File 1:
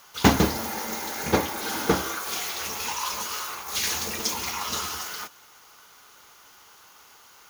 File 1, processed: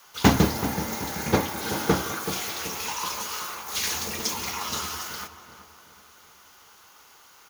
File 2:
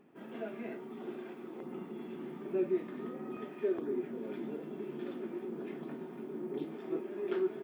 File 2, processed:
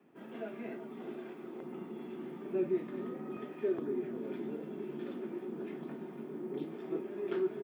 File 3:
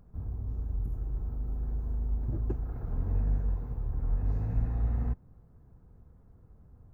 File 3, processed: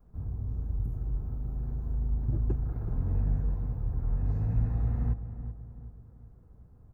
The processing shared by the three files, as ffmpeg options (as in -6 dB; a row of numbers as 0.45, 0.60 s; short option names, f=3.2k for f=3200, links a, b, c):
-filter_complex "[0:a]adynamicequalizer=threshold=0.00562:dfrequency=130:dqfactor=1.2:tfrequency=130:tqfactor=1.2:attack=5:release=100:ratio=0.375:range=3:mode=boostabove:tftype=bell,asplit=2[a][b];[b]adelay=380,lowpass=f=1.6k:p=1,volume=-10.5dB,asplit=2[c][d];[d]adelay=380,lowpass=f=1.6k:p=1,volume=0.47,asplit=2[e][f];[f]adelay=380,lowpass=f=1.6k:p=1,volume=0.47,asplit=2[g][h];[h]adelay=380,lowpass=f=1.6k:p=1,volume=0.47,asplit=2[i][j];[j]adelay=380,lowpass=f=1.6k:p=1,volume=0.47[k];[c][e][g][i][k]amix=inputs=5:normalize=0[l];[a][l]amix=inputs=2:normalize=0,volume=-1dB"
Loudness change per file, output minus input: 0.0, 0.0, +1.5 LU